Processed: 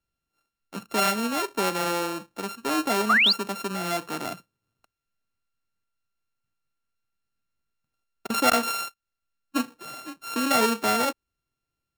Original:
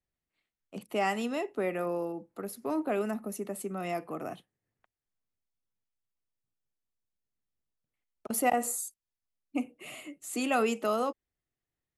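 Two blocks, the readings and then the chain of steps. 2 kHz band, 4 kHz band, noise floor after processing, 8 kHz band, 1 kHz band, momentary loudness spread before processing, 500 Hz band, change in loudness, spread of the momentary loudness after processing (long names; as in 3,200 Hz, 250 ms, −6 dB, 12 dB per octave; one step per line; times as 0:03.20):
+12.0 dB, +19.0 dB, −85 dBFS, +5.5 dB, +7.0 dB, 15 LU, +2.5 dB, +8.0 dB, 16 LU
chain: samples sorted by size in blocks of 32 samples
sound drawn into the spectrogram rise, 0:03.09–0:03.33, 1,100–5,000 Hz −24 dBFS
level +5.5 dB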